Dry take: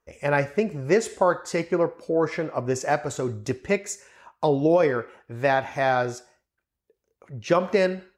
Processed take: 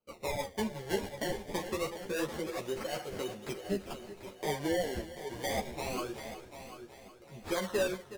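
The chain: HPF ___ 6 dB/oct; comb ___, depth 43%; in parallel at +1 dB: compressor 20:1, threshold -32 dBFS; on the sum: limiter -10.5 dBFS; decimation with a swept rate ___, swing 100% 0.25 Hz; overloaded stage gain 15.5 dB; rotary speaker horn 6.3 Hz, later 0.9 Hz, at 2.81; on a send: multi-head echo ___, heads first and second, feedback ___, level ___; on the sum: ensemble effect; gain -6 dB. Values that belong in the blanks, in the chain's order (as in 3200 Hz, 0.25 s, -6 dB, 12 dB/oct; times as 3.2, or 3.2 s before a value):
300 Hz, 5.5 ms, 24×, 0.37 s, 43%, -13.5 dB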